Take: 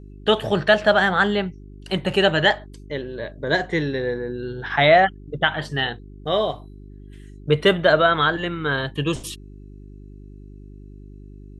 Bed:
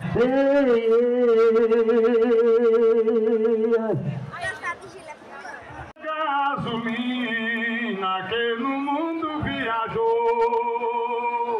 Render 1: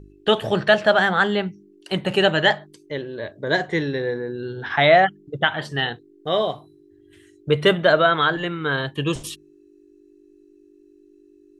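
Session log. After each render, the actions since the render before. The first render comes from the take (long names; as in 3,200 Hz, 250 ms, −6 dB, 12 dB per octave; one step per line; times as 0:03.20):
hum removal 50 Hz, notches 5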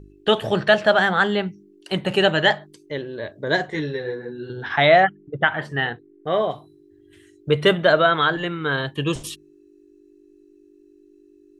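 0:03.70–0:04.50: string-ensemble chorus
0:05.03–0:06.51: high shelf with overshoot 2,800 Hz −8 dB, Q 1.5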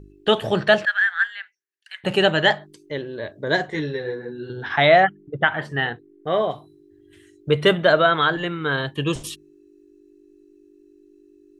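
0:00.85–0:02.04: four-pole ladder high-pass 1,600 Hz, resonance 80%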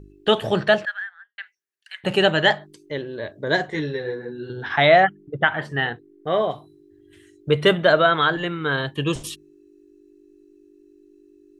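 0:00.56–0:01.38: fade out and dull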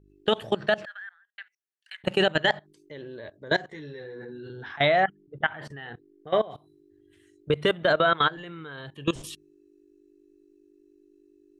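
brickwall limiter −9.5 dBFS, peak gain reduction 6.5 dB
output level in coarse steps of 20 dB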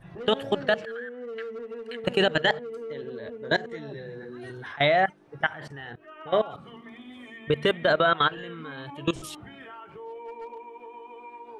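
mix in bed −19 dB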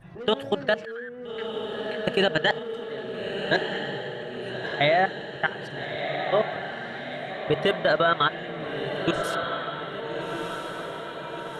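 feedback delay with all-pass diffusion 1,318 ms, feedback 59%, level −6 dB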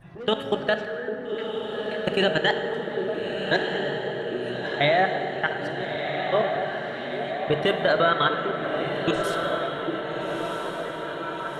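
echo through a band-pass that steps 799 ms, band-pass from 310 Hz, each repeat 0.7 octaves, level −4.5 dB
dense smooth reverb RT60 3.5 s, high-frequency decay 0.45×, DRR 6.5 dB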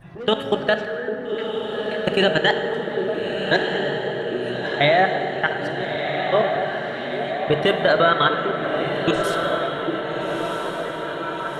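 level +4 dB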